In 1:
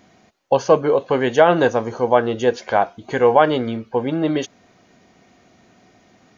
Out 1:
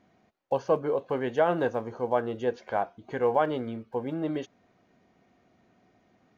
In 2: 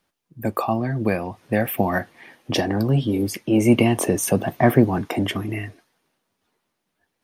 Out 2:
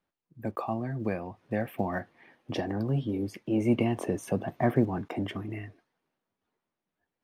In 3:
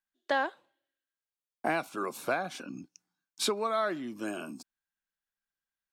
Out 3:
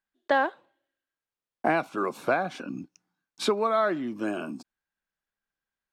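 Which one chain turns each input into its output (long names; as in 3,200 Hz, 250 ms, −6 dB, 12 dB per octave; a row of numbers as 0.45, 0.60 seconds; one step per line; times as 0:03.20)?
one scale factor per block 7 bits
low-pass filter 2,000 Hz 6 dB per octave
normalise the peak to −12 dBFS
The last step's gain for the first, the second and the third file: −10.5, −9.0, +6.5 decibels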